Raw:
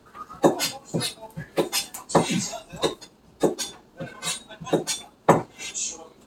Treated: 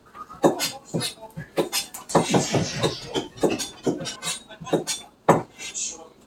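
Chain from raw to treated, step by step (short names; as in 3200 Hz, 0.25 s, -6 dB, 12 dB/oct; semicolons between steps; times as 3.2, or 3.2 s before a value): 1.87–4.16 echoes that change speed 0.137 s, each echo -3 st, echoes 2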